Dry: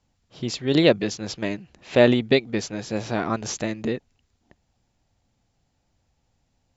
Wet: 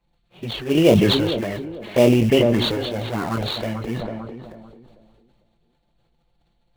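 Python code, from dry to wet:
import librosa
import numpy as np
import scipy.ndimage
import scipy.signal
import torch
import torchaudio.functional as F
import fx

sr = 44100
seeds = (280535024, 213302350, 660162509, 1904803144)

p1 = fx.freq_compress(x, sr, knee_hz=1600.0, ratio=1.5)
p2 = fx.chorus_voices(p1, sr, voices=6, hz=0.96, base_ms=22, depth_ms=4.6, mix_pct=25)
p3 = fx.low_shelf(p2, sr, hz=91.0, db=10.0)
p4 = fx.env_flanger(p3, sr, rest_ms=5.9, full_db=-17.0)
p5 = fx.sample_hold(p4, sr, seeds[0], rate_hz=2900.0, jitter_pct=20)
p6 = p4 + F.gain(torch.from_numpy(p5), -7.5).numpy()
p7 = fx.low_shelf(p6, sr, hz=220.0, db=-7.5)
p8 = p7 + fx.echo_tape(p7, sr, ms=445, feedback_pct=42, wet_db=-15, lp_hz=1000.0, drive_db=9.0, wow_cents=32, dry=0)
p9 = fx.sustainer(p8, sr, db_per_s=25.0)
y = F.gain(torch.from_numpy(p9), 3.0).numpy()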